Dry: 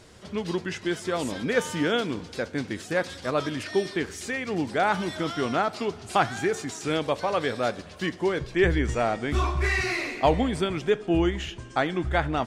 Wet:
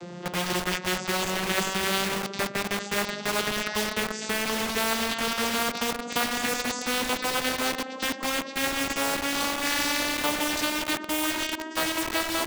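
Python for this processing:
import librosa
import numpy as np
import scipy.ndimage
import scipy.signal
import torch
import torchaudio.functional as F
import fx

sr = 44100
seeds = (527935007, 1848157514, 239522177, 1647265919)

p1 = fx.vocoder_glide(x, sr, note=53, semitones=11)
p2 = fx.quant_dither(p1, sr, seeds[0], bits=6, dither='none')
p3 = p1 + (p2 * 10.0 ** (-8.0 / 20.0))
p4 = fx.spectral_comp(p3, sr, ratio=4.0)
y = p4 * 10.0 ** (-4.0 / 20.0)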